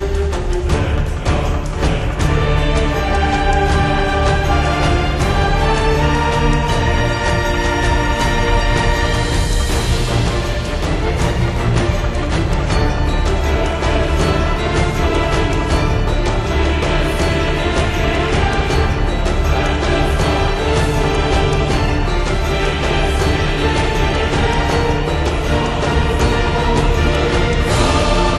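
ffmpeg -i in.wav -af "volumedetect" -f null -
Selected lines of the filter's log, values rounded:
mean_volume: -14.8 dB
max_volume: -1.8 dB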